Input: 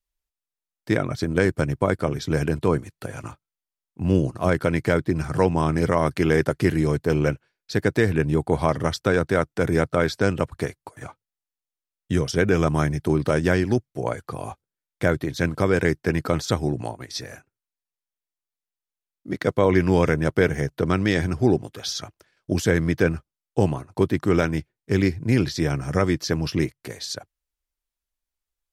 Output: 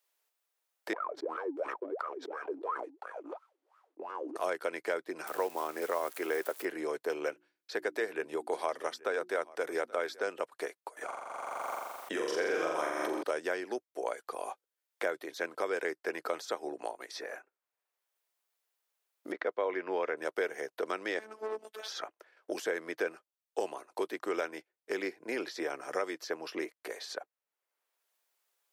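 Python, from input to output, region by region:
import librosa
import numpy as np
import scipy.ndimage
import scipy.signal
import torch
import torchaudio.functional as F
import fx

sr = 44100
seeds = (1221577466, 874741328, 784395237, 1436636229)

y = fx.chain(x, sr, fx.leveller(passes=2),
    fx.wah_lfo(hz=2.9, low_hz=270.0, high_hz=1300.0, q=12.0),
    fx.sustainer(db_per_s=52.0), at=(0.93, 4.36))
y = fx.chain(y, sr, fx.crossing_spikes(level_db=-21.5),
    fx.highpass(hz=150.0, slope=12), at=(5.27, 6.65))
y = fx.chain(y, sr, fx.hum_notches(base_hz=60, count=6),
    fx.echo_single(ms=829, db=-23.0), at=(7.29, 10.27))
y = fx.chain(y, sr, fx.hum_notches(base_hz=60, count=7),
    fx.room_flutter(wall_m=7.3, rt60_s=1.1),
    fx.pre_swell(db_per_s=28.0), at=(11.04, 13.23))
y = fx.chain(y, sr, fx.lowpass(hz=2400.0, slope=12),
    fx.low_shelf(hz=79.0, db=-9.0), at=(19.32, 20.17))
y = fx.chain(y, sr, fx.tube_stage(drive_db=22.0, bias=0.45),
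    fx.robotise(hz=217.0), at=(21.19, 21.88))
y = scipy.signal.sosfilt(scipy.signal.butter(4, 420.0, 'highpass', fs=sr, output='sos'), y)
y = fx.peak_eq(y, sr, hz=5800.0, db=-4.0, octaves=2.7)
y = fx.band_squash(y, sr, depth_pct=70)
y = F.gain(torch.from_numpy(y), -8.5).numpy()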